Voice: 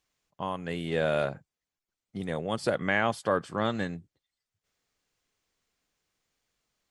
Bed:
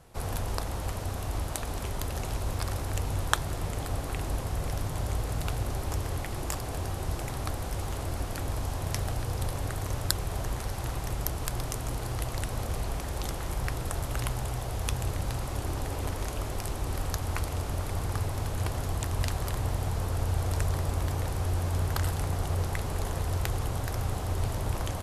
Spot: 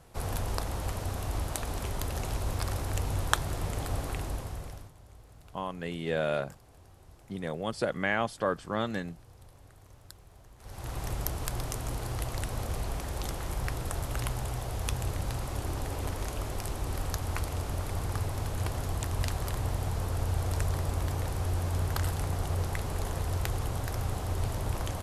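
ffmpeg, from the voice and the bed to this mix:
ffmpeg -i stem1.wav -i stem2.wav -filter_complex "[0:a]adelay=5150,volume=-2.5dB[link_01];[1:a]volume=20.5dB,afade=type=out:start_time=4.03:duration=0.9:silence=0.0794328,afade=type=in:start_time=10.58:duration=0.46:silence=0.0891251[link_02];[link_01][link_02]amix=inputs=2:normalize=0" out.wav

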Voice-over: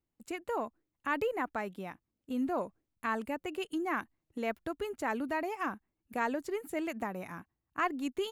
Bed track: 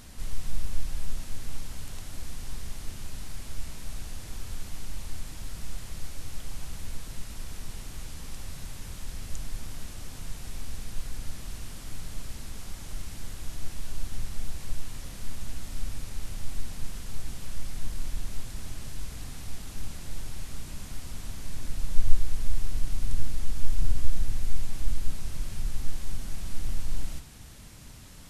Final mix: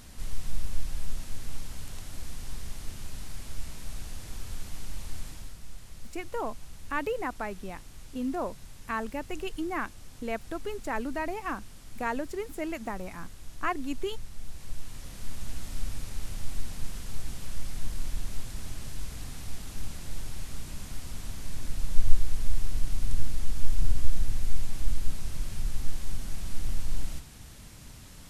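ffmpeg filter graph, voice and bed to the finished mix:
ffmpeg -i stem1.wav -i stem2.wav -filter_complex "[0:a]adelay=5850,volume=1dB[link_01];[1:a]volume=7dB,afade=type=out:start_time=5.26:duration=0.32:silence=0.446684,afade=type=in:start_time=14.37:duration=1.21:silence=0.398107[link_02];[link_01][link_02]amix=inputs=2:normalize=0" out.wav

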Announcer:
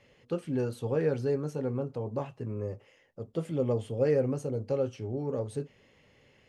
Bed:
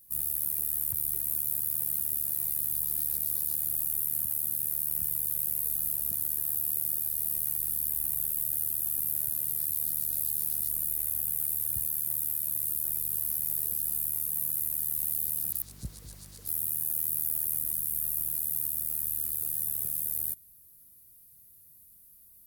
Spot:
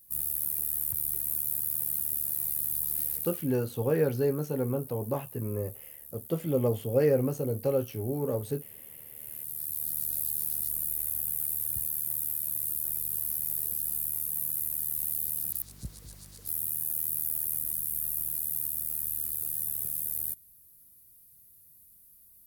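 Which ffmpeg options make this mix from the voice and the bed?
ffmpeg -i stem1.wav -i stem2.wav -filter_complex "[0:a]adelay=2950,volume=2dB[link_01];[1:a]volume=15.5dB,afade=type=out:start_time=3.05:duration=0.44:silence=0.149624,afade=type=in:start_time=9.12:duration=0.91:silence=0.158489[link_02];[link_01][link_02]amix=inputs=2:normalize=0" out.wav

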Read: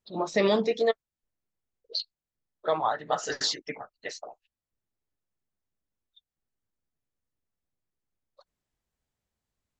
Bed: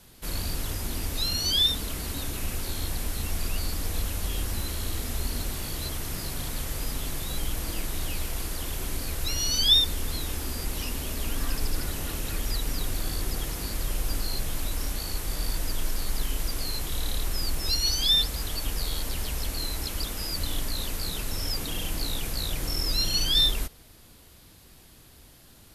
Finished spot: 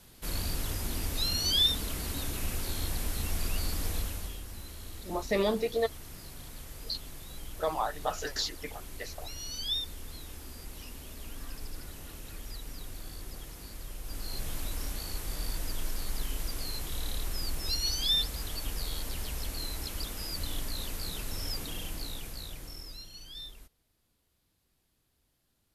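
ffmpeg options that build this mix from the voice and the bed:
ffmpeg -i stem1.wav -i stem2.wav -filter_complex "[0:a]adelay=4950,volume=-4.5dB[link_01];[1:a]volume=5dB,afade=type=out:start_time=3.88:duration=0.52:silence=0.298538,afade=type=in:start_time=14.02:duration=0.45:silence=0.421697,afade=type=out:start_time=21.52:duration=1.56:silence=0.141254[link_02];[link_01][link_02]amix=inputs=2:normalize=0" out.wav

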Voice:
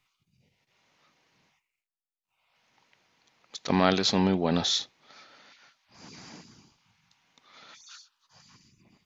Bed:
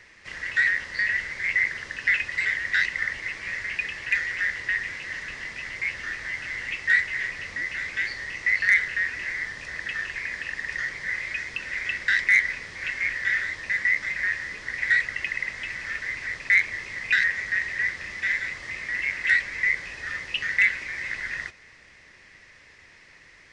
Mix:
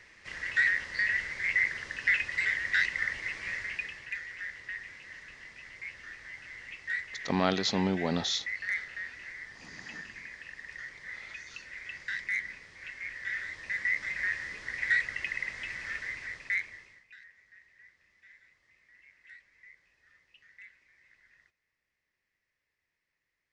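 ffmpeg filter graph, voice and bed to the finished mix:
ffmpeg -i stem1.wav -i stem2.wav -filter_complex "[0:a]adelay=3600,volume=-4.5dB[link_01];[1:a]volume=4dB,afade=type=out:start_time=3.49:duration=0.63:silence=0.334965,afade=type=in:start_time=13.03:duration=1.18:silence=0.398107,afade=type=out:start_time=15.95:duration=1.1:silence=0.0473151[link_02];[link_01][link_02]amix=inputs=2:normalize=0" out.wav

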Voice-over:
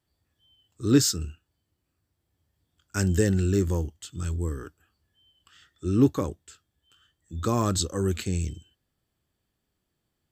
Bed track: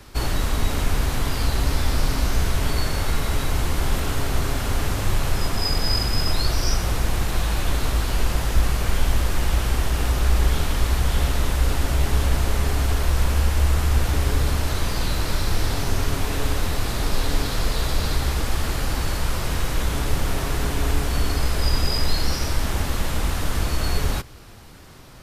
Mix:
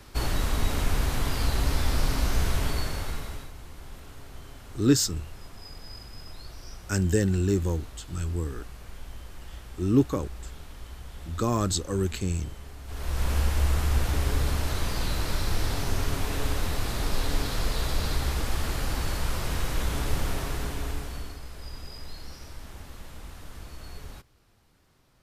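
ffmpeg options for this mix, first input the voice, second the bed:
ffmpeg -i stem1.wav -i stem2.wav -filter_complex "[0:a]adelay=3950,volume=-1dB[link_01];[1:a]volume=12.5dB,afade=type=out:start_time=2.54:duration=0.98:silence=0.133352,afade=type=in:start_time=12.85:duration=0.49:silence=0.149624,afade=type=out:start_time=20.21:duration=1.19:silence=0.188365[link_02];[link_01][link_02]amix=inputs=2:normalize=0" out.wav

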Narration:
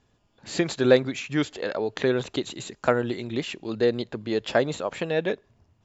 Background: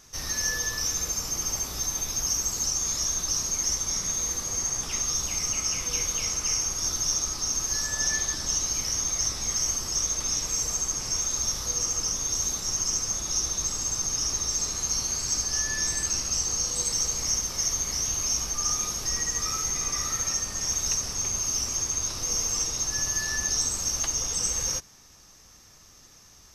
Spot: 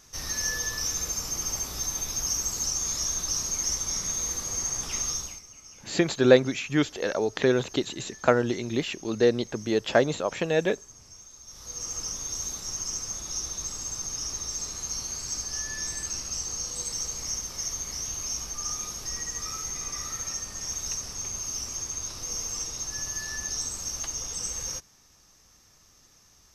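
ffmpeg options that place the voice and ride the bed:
ffmpeg -i stem1.wav -i stem2.wav -filter_complex "[0:a]adelay=5400,volume=1dB[link_01];[1:a]volume=14dB,afade=type=out:start_time=5.07:duration=0.35:silence=0.105925,afade=type=in:start_time=11.46:duration=0.51:silence=0.16788[link_02];[link_01][link_02]amix=inputs=2:normalize=0" out.wav

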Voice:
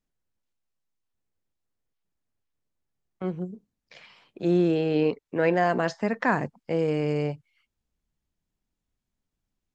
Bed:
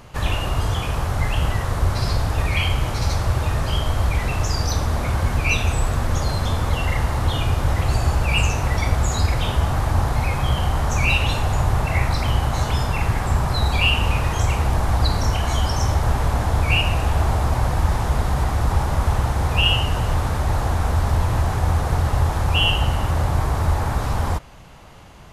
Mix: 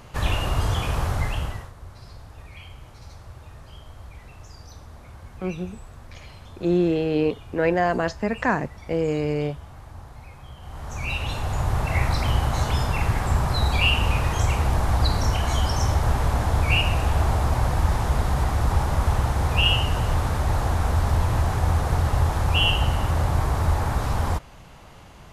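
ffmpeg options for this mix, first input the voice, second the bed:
ffmpeg -i stem1.wav -i stem2.wav -filter_complex "[0:a]adelay=2200,volume=1.5dB[link_01];[1:a]volume=18.5dB,afade=type=out:start_time=1.07:duration=0.65:silence=0.0944061,afade=type=in:start_time=10.6:duration=1.48:silence=0.1[link_02];[link_01][link_02]amix=inputs=2:normalize=0" out.wav

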